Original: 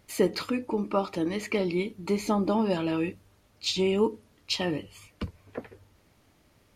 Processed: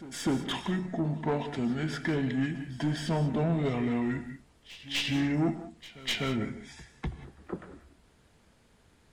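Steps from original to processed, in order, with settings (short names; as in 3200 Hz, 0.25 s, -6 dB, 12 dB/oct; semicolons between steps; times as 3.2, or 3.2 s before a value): tracing distortion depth 0.028 ms; speed mistake 45 rpm record played at 33 rpm; soft clip -22.5 dBFS, distortion -13 dB; pre-echo 0.25 s -17.5 dB; non-linear reverb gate 0.21 s rising, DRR 10.5 dB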